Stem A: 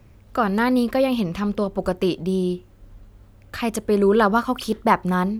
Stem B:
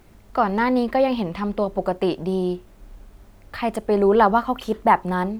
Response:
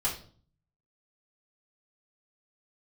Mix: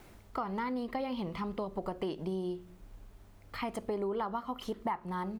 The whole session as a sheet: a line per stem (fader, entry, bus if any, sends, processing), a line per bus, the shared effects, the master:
-15.5 dB, 0.00 s, send -11.5 dB, low-pass 2.5 kHz 6 dB/octave
+0.5 dB, 1.1 ms, no send, bass shelf 190 Hz -11 dB; auto duck -8 dB, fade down 0.25 s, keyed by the first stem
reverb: on, RT60 0.45 s, pre-delay 3 ms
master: compression 6:1, threshold -32 dBFS, peak gain reduction 15 dB

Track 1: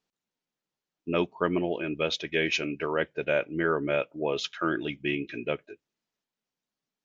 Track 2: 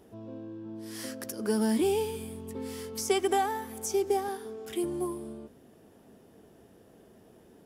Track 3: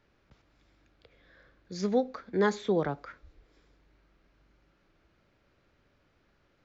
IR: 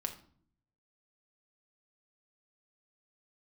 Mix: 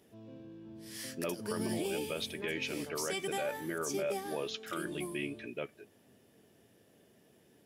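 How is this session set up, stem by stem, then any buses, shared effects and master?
-0.5 dB, 0.10 s, no send, none
-1.0 dB, 0.00 s, no send, octave divider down 1 oct, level -5 dB; resonant high shelf 1.6 kHz +6 dB, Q 1.5
-12.5 dB, 0.00 s, no send, none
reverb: none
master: high-pass 100 Hz; feedback comb 580 Hz, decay 0.19 s, harmonics all, mix 60%; peak limiter -25.5 dBFS, peak gain reduction 8.5 dB

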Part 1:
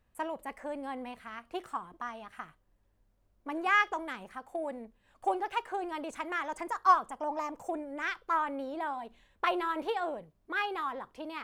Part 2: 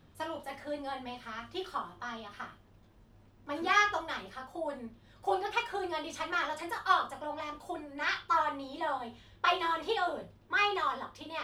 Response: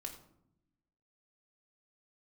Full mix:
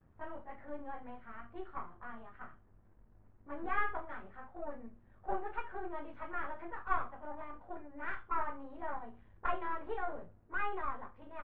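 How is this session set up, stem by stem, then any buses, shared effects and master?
-15.5 dB, 0.00 s, no send, compression, threshold -40 dBFS, peak gain reduction 21 dB
-5.5 dB, 8.9 ms, polarity flipped, send -17 dB, partial rectifier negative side -7 dB; bass shelf 61 Hz +9 dB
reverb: on, RT60 0.75 s, pre-delay 3 ms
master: low-pass 1.9 kHz 24 dB/octave

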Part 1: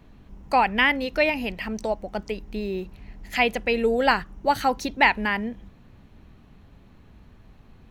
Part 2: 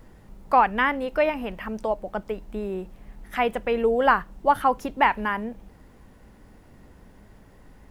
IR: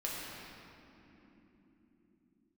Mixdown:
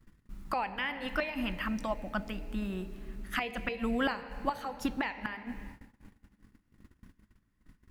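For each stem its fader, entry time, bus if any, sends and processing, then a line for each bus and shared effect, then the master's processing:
-13.5 dB, 0.00 s, send -16 dB, level rider gain up to 7 dB; auto duck -9 dB, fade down 0.85 s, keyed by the second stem
+1.0 dB, 0.00 s, polarity flipped, no send, high-order bell 600 Hz -16 dB 1.3 oct; inverted gate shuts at -19 dBFS, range -32 dB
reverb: on, pre-delay 6 ms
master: gate -45 dBFS, range -24 dB

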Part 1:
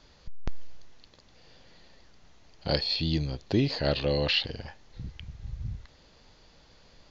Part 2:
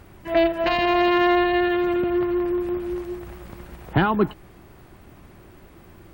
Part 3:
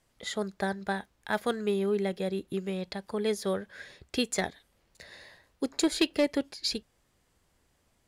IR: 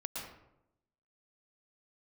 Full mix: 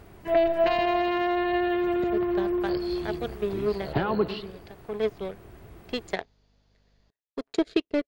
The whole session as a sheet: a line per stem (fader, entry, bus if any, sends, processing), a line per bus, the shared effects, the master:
-14.5 dB, 0.00 s, no send, hum 50 Hz, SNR 20 dB
-4.5 dB, 0.00 s, send -12 dB, compression, threshold -20 dBFS, peak gain reduction 7 dB
+3.0 dB, 1.75 s, no send, power-law waveshaper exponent 2; rotary cabinet horn 0.85 Hz; low-pass 3.6 kHz 12 dB/octave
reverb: on, RT60 0.85 s, pre-delay 106 ms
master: small resonant body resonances 430/670 Hz, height 7 dB, ringing for 45 ms

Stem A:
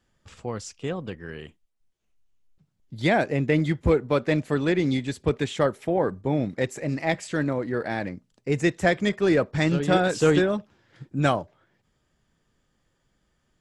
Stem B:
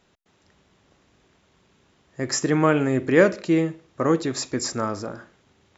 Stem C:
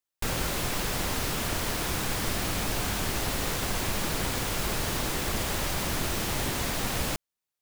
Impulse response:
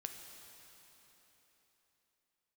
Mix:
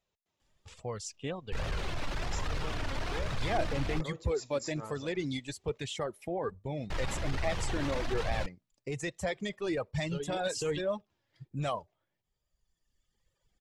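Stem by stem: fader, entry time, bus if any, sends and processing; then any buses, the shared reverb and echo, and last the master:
+2.5 dB, 0.40 s, bus A, no send, reverb removal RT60 1.5 s
-14.5 dB, 0.00 s, bus A, no send, gain riding
+2.0 dB, 1.30 s, muted 4.01–6.90 s, no bus, no send, resonances exaggerated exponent 1.5; low-pass 4.6 kHz 12 dB/octave; hard clipper -27 dBFS, distortion -14 dB
bus A: 0.0 dB, peaking EQ 1.5 kHz -7.5 dB 0.73 oct; peak limiter -17 dBFS, peak gain reduction 10 dB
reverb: none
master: flange 1.2 Hz, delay 1.5 ms, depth 2.2 ms, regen +51%; peaking EQ 280 Hz -7.5 dB 1.3 oct

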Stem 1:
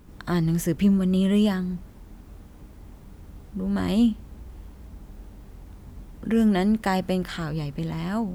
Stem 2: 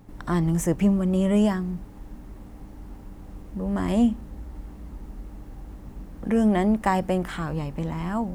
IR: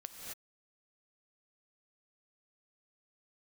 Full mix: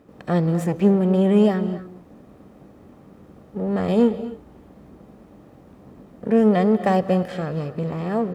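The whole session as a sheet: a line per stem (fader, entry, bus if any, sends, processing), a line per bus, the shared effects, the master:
-1.5 dB, 0.00 s, send -4.5 dB, comb filter that takes the minimum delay 1.6 ms; low-pass 1.9 kHz 6 dB/octave
-9.5 dB, 0.6 ms, no send, none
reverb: on, pre-delay 3 ms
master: high-pass 290 Hz 12 dB/octave; bass shelf 400 Hz +12 dB

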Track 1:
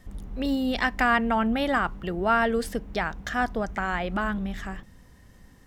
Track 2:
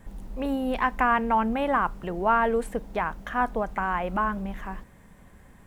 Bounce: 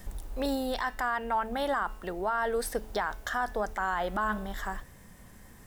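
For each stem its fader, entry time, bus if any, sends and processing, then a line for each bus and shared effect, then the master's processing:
+1.0 dB, 0.00 s, no send, de-hum 216.5 Hz, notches 32; auto duck -8 dB, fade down 0.25 s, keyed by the second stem
-5.0 dB, 0.00 s, polarity flipped, no send, none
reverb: none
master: treble shelf 6 kHz +10.5 dB; gain riding within 3 dB 0.5 s; peak limiter -20 dBFS, peak gain reduction 8 dB

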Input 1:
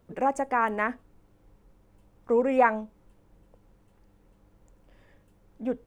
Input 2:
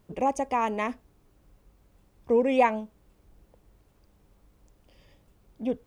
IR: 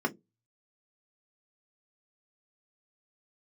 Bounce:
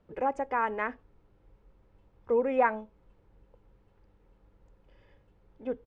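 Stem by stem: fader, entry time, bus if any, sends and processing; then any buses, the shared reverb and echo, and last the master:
-4.0 dB, 0.00 s, no send, none
-8.5 dB, 2 ms, no send, compression, threshold -30 dBFS, peak gain reduction 13 dB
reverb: none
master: low-pass 3.4 kHz 12 dB/octave

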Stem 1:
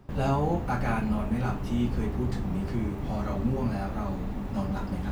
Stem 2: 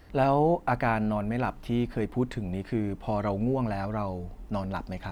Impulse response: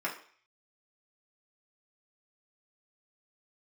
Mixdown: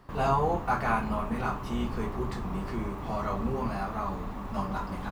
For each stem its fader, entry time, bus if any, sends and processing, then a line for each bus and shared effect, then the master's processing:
-1.0 dB, 0.00 s, no send, octave divider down 2 oct, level -2 dB; peaking EQ 1.1 kHz +10.5 dB 0.56 oct
-7.5 dB, 0.5 ms, polarity flipped, no send, none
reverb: none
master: bass shelf 290 Hz -7 dB

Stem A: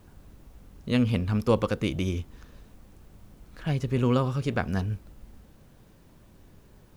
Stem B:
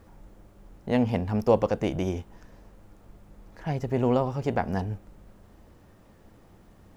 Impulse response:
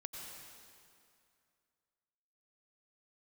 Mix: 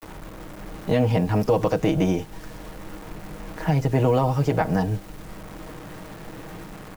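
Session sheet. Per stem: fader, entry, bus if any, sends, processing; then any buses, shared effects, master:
-2.5 dB, 0.00 s, no send, auto duck -15 dB, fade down 1.90 s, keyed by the second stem
+1.0 dB, 14 ms, polarity flipped, no send, comb 6.4 ms, depth 73%; peak limiter -16 dBFS, peak gain reduction 10 dB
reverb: none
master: level rider gain up to 5 dB; bit crusher 8-bit; three bands compressed up and down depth 40%

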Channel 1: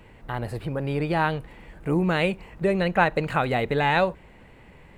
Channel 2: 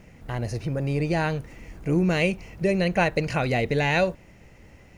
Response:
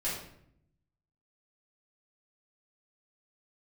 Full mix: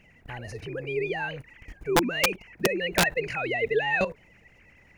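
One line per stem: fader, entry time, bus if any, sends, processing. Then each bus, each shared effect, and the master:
+2.5 dB, 0.00 s, no send, formants replaced by sine waves; high-pass 370 Hz 12 dB/octave; high-order bell 860 Hz -13 dB
+0.5 dB, 0.00 s, no send, level held to a coarse grid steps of 20 dB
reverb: none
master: integer overflow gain 12.5 dB

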